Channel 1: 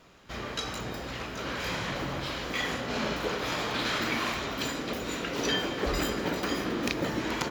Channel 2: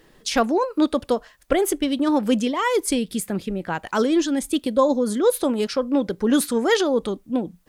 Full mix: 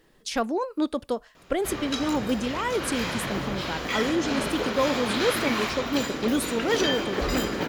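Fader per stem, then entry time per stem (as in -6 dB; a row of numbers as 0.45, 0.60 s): +2.5, -6.5 dB; 1.35, 0.00 s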